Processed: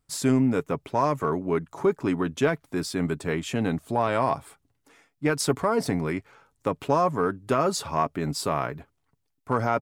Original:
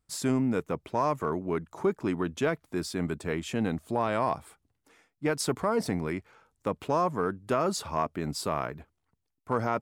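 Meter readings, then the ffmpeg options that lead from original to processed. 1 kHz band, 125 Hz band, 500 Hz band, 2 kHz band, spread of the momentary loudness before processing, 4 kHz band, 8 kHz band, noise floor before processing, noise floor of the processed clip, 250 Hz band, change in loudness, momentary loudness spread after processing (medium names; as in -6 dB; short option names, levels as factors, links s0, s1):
+4.0 dB, +5.0 dB, +4.0 dB, +4.0 dB, 6 LU, +4.0 dB, +4.0 dB, -80 dBFS, -75 dBFS, +4.0 dB, +4.0 dB, 6 LU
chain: -af "aecho=1:1:7.2:0.32,volume=1.5"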